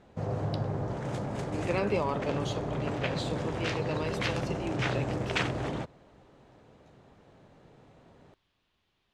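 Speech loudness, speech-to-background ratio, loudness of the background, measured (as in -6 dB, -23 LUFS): -36.0 LUFS, -3.0 dB, -33.0 LUFS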